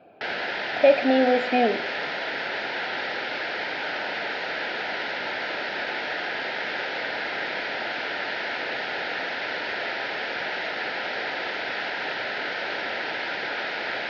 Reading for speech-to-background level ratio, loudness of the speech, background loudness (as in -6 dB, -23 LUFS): 7.0 dB, -21.5 LUFS, -28.5 LUFS